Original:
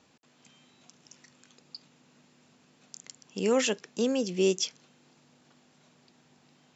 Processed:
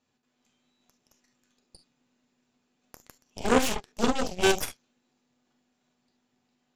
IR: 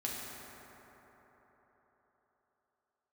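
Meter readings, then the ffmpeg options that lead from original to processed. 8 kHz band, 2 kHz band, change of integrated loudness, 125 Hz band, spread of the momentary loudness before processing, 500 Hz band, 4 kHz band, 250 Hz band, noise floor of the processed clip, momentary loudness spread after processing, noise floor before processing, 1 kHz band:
n/a, +7.0 dB, +1.5 dB, +0.5 dB, 21 LU, -0.5 dB, +1.5 dB, +0.5 dB, -77 dBFS, 9 LU, -64 dBFS, +11.0 dB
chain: -filter_complex "[1:a]atrim=start_sample=2205,atrim=end_sample=3528[a];[0:a][a]afir=irnorm=-1:irlink=0,aeval=exprs='0.266*(cos(1*acos(clip(val(0)/0.266,-1,1)))-cos(1*PI/2))+0.119*(cos(2*acos(clip(val(0)/0.266,-1,1)))-cos(2*PI/2))+0.0473*(cos(3*acos(clip(val(0)/0.266,-1,1)))-cos(3*PI/2))+0.0106*(cos(7*acos(clip(val(0)/0.266,-1,1)))-cos(7*PI/2))+0.0531*(cos(8*acos(clip(val(0)/0.266,-1,1)))-cos(8*PI/2))':c=same,volume=1.5dB"

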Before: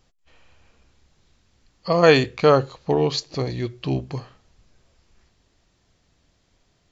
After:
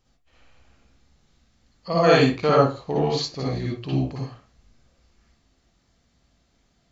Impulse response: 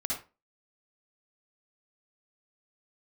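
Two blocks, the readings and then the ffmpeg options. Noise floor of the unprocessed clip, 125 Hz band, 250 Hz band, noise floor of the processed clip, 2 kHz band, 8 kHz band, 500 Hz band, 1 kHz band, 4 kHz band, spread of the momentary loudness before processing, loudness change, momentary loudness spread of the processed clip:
-66 dBFS, +0.5 dB, +0.5 dB, -66 dBFS, -2.5 dB, n/a, -2.0 dB, +0.5 dB, -2.0 dB, 16 LU, -1.5 dB, 12 LU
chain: -filter_complex "[1:a]atrim=start_sample=2205[a];[0:a][a]afir=irnorm=-1:irlink=0,volume=-5.5dB"

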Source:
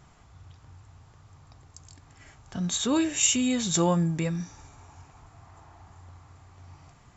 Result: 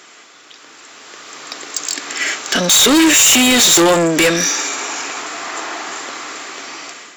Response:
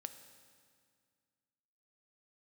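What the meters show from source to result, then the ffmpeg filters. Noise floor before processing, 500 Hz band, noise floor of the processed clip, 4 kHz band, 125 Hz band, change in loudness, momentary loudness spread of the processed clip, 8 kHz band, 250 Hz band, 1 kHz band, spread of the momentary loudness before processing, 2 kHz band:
-56 dBFS, +15.5 dB, -43 dBFS, +20.0 dB, +1.5 dB, +13.0 dB, 20 LU, n/a, +11.5 dB, +16.0 dB, 13 LU, +23.0 dB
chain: -filter_complex "[0:a]equalizer=f=860:w=1.2:g=-15,asplit=2[a][b];[b]highpass=f=720:p=1,volume=32dB,asoftclip=type=tanh:threshold=-9.5dB[c];[a][c]amix=inputs=2:normalize=0,lowpass=f=5.2k:p=1,volume=-6dB,highpass=f=300:w=0.5412,highpass=f=300:w=1.3066,asoftclip=type=tanh:threshold=-23dB,dynaudnorm=f=540:g=5:m=15dB"

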